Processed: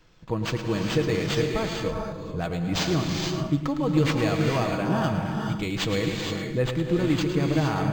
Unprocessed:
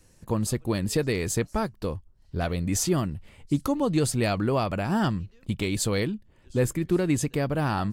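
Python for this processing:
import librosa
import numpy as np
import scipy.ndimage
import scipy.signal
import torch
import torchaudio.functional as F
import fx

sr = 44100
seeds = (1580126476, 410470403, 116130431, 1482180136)

y = fx.high_shelf(x, sr, hz=8700.0, db=8.0)
y = y + 0.44 * np.pad(y, (int(6.3 * sr / 1000.0), 0))[:len(y)]
y = fx.echo_feedback(y, sr, ms=109, feedback_pct=27, wet_db=-10.0)
y = fx.rev_gated(y, sr, seeds[0], gate_ms=490, shape='rising', drr_db=2.0)
y = np.interp(np.arange(len(y)), np.arange(len(y))[::4], y[::4])
y = y * 10.0 ** (-2.0 / 20.0)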